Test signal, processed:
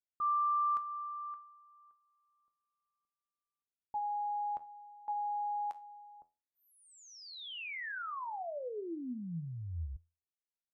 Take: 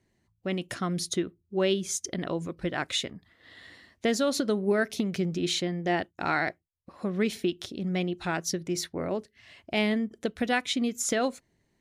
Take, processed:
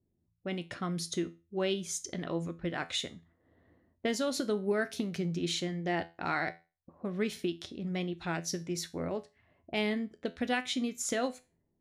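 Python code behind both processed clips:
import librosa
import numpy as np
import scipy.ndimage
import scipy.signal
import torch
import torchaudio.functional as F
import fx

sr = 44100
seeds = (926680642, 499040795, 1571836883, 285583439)

y = fx.env_lowpass(x, sr, base_hz=420.0, full_db=-27.5)
y = fx.comb_fb(y, sr, f0_hz=84.0, decay_s=0.29, harmonics='all', damping=0.0, mix_pct=60)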